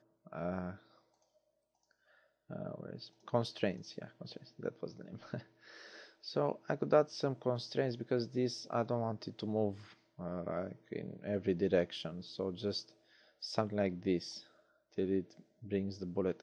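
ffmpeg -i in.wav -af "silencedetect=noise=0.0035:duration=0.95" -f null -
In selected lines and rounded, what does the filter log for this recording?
silence_start: 0.76
silence_end: 2.50 | silence_duration: 1.74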